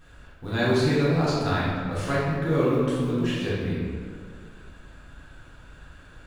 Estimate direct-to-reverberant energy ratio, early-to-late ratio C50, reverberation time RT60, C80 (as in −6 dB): −8.5 dB, −2.0 dB, 2.1 s, 0.5 dB